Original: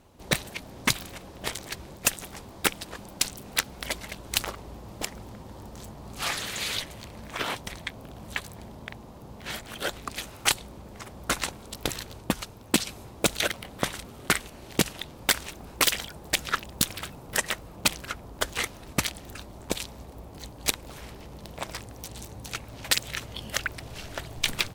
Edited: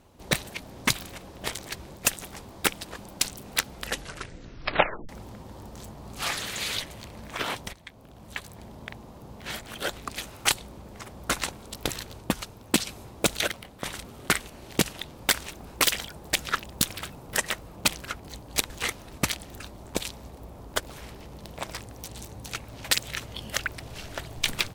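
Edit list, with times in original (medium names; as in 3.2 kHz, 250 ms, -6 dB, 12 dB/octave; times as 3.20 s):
3.71 s: tape stop 1.38 s
7.73–8.85 s: fade in, from -13.5 dB
13.39–13.85 s: fade out, to -8.5 dB
18.20–18.45 s: swap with 20.30–20.80 s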